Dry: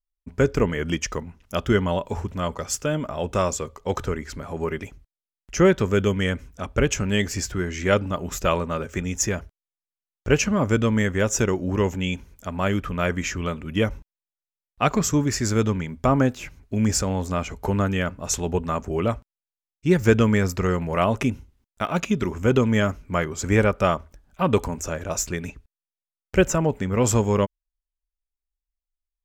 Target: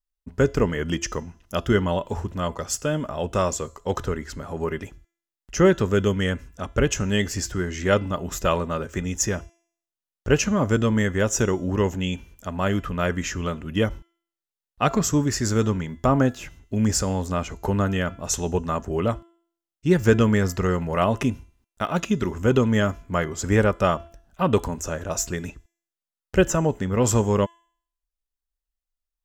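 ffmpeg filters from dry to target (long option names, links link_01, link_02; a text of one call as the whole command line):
ffmpeg -i in.wav -af "bandreject=frequency=2300:width=8.5,bandreject=frequency=338.4:width_type=h:width=4,bandreject=frequency=676.8:width_type=h:width=4,bandreject=frequency=1015.2:width_type=h:width=4,bandreject=frequency=1353.6:width_type=h:width=4,bandreject=frequency=1692:width_type=h:width=4,bandreject=frequency=2030.4:width_type=h:width=4,bandreject=frequency=2368.8:width_type=h:width=4,bandreject=frequency=2707.2:width_type=h:width=4,bandreject=frequency=3045.6:width_type=h:width=4,bandreject=frequency=3384:width_type=h:width=4,bandreject=frequency=3722.4:width_type=h:width=4,bandreject=frequency=4060.8:width_type=h:width=4,bandreject=frequency=4399.2:width_type=h:width=4,bandreject=frequency=4737.6:width_type=h:width=4,bandreject=frequency=5076:width_type=h:width=4,bandreject=frequency=5414.4:width_type=h:width=4,bandreject=frequency=5752.8:width_type=h:width=4,bandreject=frequency=6091.2:width_type=h:width=4,bandreject=frequency=6429.6:width_type=h:width=4,bandreject=frequency=6768:width_type=h:width=4,bandreject=frequency=7106.4:width_type=h:width=4,bandreject=frequency=7444.8:width_type=h:width=4,bandreject=frequency=7783.2:width_type=h:width=4,bandreject=frequency=8121.6:width_type=h:width=4,bandreject=frequency=8460:width_type=h:width=4,bandreject=frequency=8798.4:width_type=h:width=4,bandreject=frequency=9136.8:width_type=h:width=4,bandreject=frequency=9475.2:width_type=h:width=4,bandreject=frequency=9813.6:width_type=h:width=4,bandreject=frequency=10152:width_type=h:width=4,bandreject=frequency=10490.4:width_type=h:width=4,bandreject=frequency=10828.8:width_type=h:width=4,bandreject=frequency=11167.2:width_type=h:width=4,bandreject=frequency=11505.6:width_type=h:width=4,bandreject=frequency=11844:width_type=h:width=4,bandreject=frequency=12182.4:width_type=h:width=4" out.wav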